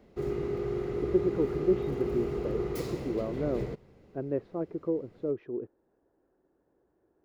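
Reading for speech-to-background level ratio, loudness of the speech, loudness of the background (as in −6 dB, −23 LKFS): 0.5 dB, −33.5 LKFS, −34.0 LKFS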